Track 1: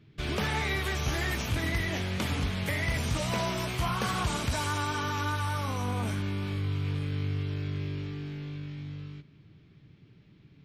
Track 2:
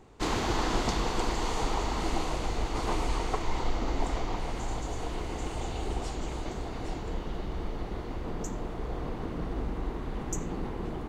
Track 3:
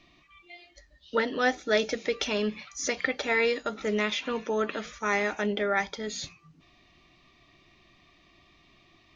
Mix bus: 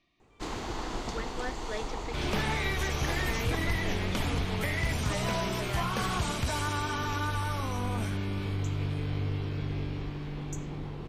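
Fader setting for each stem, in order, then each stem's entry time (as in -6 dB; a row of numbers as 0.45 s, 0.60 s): -1.0 dB, -7.0 dB, -13.5 dB; 1.95 s, 0.20 s, 0.00 s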